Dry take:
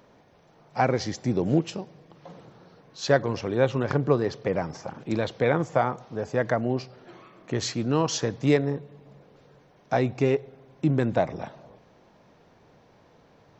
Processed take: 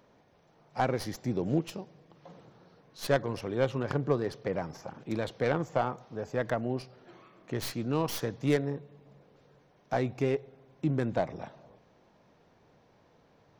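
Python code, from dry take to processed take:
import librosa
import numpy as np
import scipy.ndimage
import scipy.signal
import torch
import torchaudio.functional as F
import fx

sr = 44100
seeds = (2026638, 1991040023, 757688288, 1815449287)

y = fx.tracing_dist(x, sr, depth_ms=0.11)
y = y * 10.0 ** (-6.0 / 20.0)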